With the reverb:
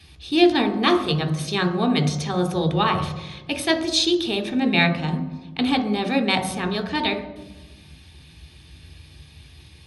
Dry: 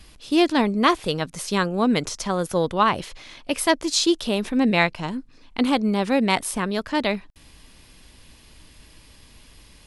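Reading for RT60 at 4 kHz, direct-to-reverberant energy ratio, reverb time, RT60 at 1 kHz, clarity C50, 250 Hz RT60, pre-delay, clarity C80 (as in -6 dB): 0.80 s, 6.0 dB, 1.2 s, 1.1 s, 10.5 dB, 1.7 s, 3 ms, 12.5 dB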